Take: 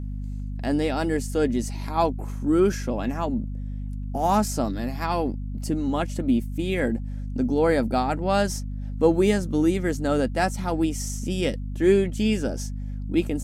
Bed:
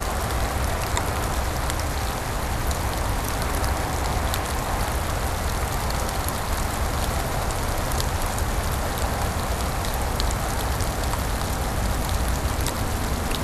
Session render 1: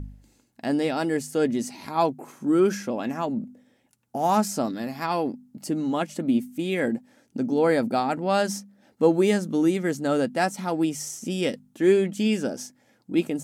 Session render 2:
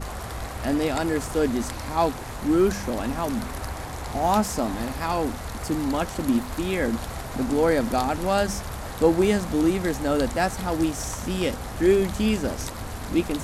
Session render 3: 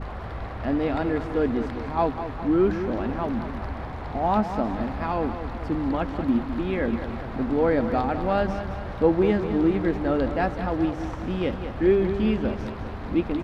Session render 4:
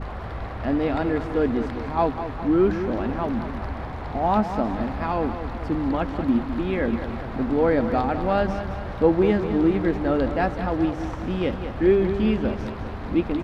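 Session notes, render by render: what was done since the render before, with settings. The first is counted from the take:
hum removal 50 Hz, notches 5
mix in bed −8.5 dB
high-frequency loss of the air 360 metres; repeating echo 203 ms, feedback 53%, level −10 dB
level +1.5 dB

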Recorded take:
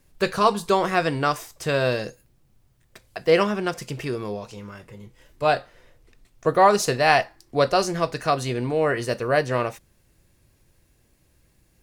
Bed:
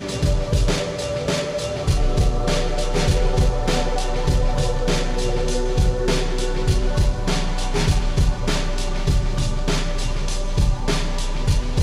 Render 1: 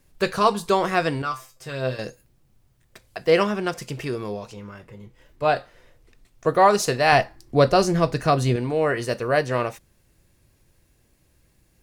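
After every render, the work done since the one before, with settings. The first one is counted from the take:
0:01.22–0:01.99: tuned comb filter 130 Hz, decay 0.19 s, mix 90%
0:04.53–0:05.56: parametric band 9,700 Hz −6.5 dB 2.2 octaves
0:07.12–0:08.56: low-shelf EQ 350 Hz +9.5 dB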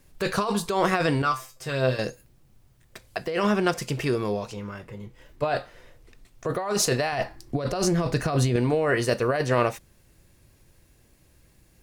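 compressor whose output falls as the input rises −23 dBFS, ratio −1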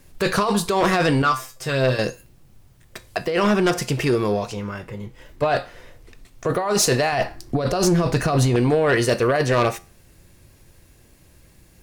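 tuned comb filter 89 Hz, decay 0.37 s, harmonics all, mix 40%
sine wavefolder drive 6 dB, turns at −12 dBFS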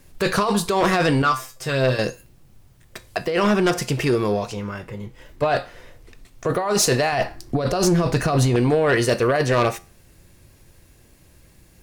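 no processing that can be heard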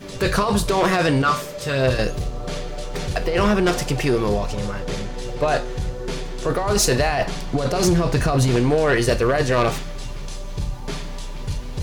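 mix in bed −8 dB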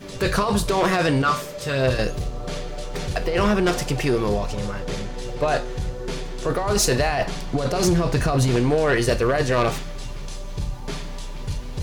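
level −1.5 dB

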